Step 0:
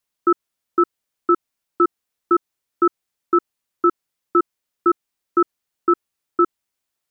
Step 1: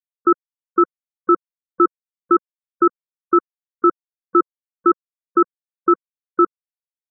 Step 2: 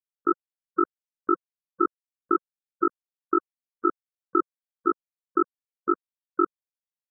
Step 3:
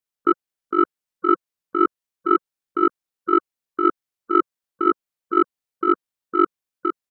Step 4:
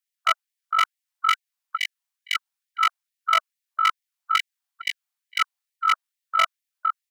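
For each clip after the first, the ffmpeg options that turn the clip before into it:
-af "afftfilt=real='re*gte(hypot(re,im),0.0501)':imag='im*gte(hypot(re,im),0.0501)':win_size=1024:overlap=0.75,alimiter=limit=-11.5dB:level=0:latency=1,volume=6.5dB"
-af "tremolo=f=48:d=0.947,volume=-4.5dB"
-filter_complex "[0:a]acontrast=47,asplit=2[a][b];[b]aecho=0:1:458:0.501[c];[a][c]amix=inputs=2:normalize=0"
-af "aeval=exprs='0.299*(abs(mod(val(0)/0.299+3,4)-2)-1)':c=same,afftfilt=real='re*gte(b*sr/1024,610*pow(1800/610,0.5+0.5*sin(2*PI*2.3*pts/sr)))':imag='im*gte(b*sr/1024,610*pow(1800/610,0.5+0.5*sin(2*PI*2.3*pts/sr)))':win_size=1024:overlap=0.75,volume=2.5dB"

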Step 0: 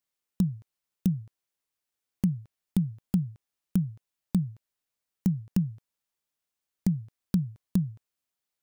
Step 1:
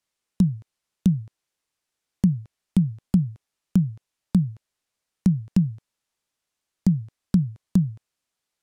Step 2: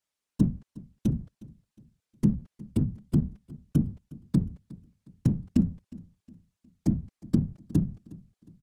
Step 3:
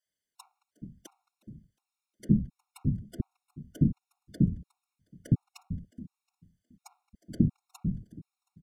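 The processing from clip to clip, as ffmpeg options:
-filter_complex "[0:a]lowpass=10k,acrossover=split=370[a][b];[b]acompressor=threshold=-44dB:ratio=6[c];[a][c]amix=inputs=2:normalize=0,volume=6.5dB"
-af "afftfilt=real='hypot(re,im)*cos(2*PI*random(0))':imag='hypot(re,im)*sin(2*PI*random(1))':win_size=512:overlap=0.75,aecho=1:1:361|722|1083:0.0891|0.0348|0.0136,volume=1.5dB"
-filter_complex "[0:a]acrossover=split=520[a][b];[a]adelay=60[c];[c][b]amix=inputs=2:normalize=0,afftfilt=real='re*gt(sin(2*PI*1.4*pts/sr)*(1-2*mod(floor(b*sr/1024/720),2)),0)':imag='im*gt(sin(2*PI*1.4*pts/sr)*(1-2*mod(floor(b*sr/1024/720),2)),0)':win_size=1024:overlap=0.75"

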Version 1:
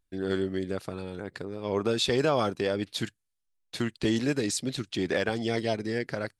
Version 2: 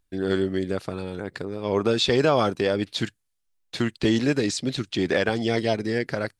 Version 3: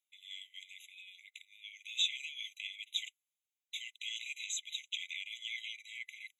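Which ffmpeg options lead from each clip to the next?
-filter_complex "[0:a]acrossover=split=7200[a][b];[b]acompressor=threshold=-59dB:ratio=4:attack=1:release=60[c];[a][c]amix=inputs=2:normalize=0,volume=5dB"
-af "alimiter=limit=-14dB:level=0:latency=1:release=27,afftfilt=real='re*eq(mod(floor(b*sr/1024/2000),2),1)':imag='im*eq(mod(floor(b*sr/1024/2000),2),1)':win_size=1024:overlap=0.75,volume=-4dB"

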